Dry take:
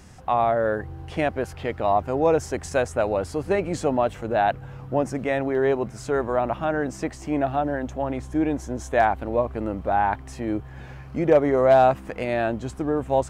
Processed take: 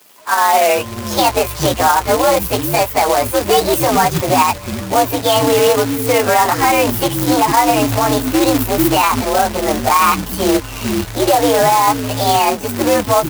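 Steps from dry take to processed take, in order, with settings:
partials spread apart or drawn together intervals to 125%
automatic gain control gain up to 15.5 dB
multiband delay without the direct sound highs, lows 440 ms, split 280 Hz
log-companded quantiser 4 bits
high-pass filter 110 Hz 6 dB per octave
parametric band 760 Hz +2 dB 2.4 octaves
brickwall limiter −9.5 dBFS, peak gain reduction 11.5 dB
high-shelf EQ 3,800 Hz +7 dB
level +5 dB

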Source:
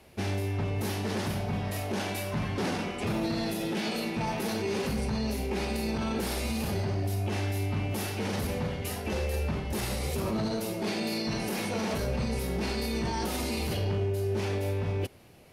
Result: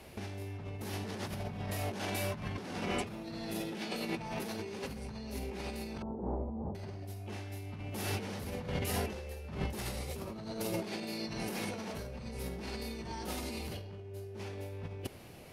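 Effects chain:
0:06.02–0:06.75: Chebyshev low-pass filter 950 Hz, order 4
compressor whose output falls as the input rises −35 dBFS, ratio −0.5
level −2.5 dB

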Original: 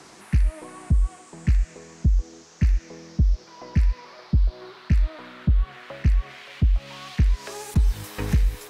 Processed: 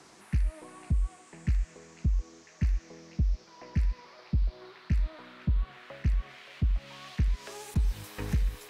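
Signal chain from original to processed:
echo through a band-pass that steps 501 ms, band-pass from 3,200 Hz, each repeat −0.7 octaves, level −6 dB
level −7.5 dB

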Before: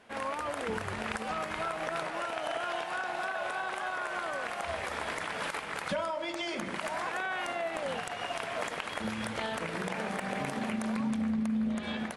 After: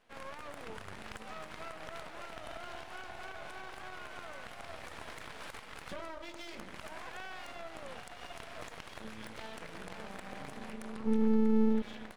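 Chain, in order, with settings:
0:11.05–0:11.82: parametric band 220 Hz +15 dB 0.21 octaves
half-wave rectification
level −7 dB

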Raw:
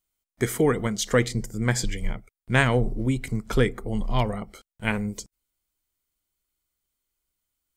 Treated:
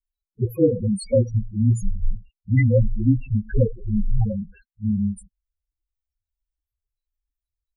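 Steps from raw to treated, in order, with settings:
partials spread apart or drawn together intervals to 110%
spectral peaks only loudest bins 4
level +8.5 dB

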